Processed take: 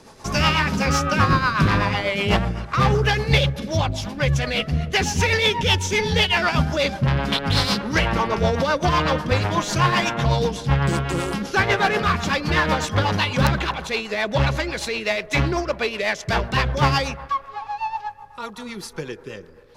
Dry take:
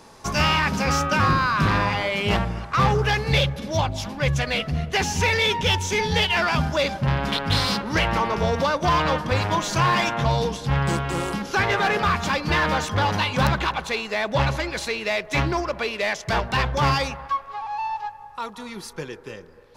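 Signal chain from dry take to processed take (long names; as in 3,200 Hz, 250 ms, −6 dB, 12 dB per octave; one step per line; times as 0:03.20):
rotating-speaker cabinet horn 8 Hz
level +4 dB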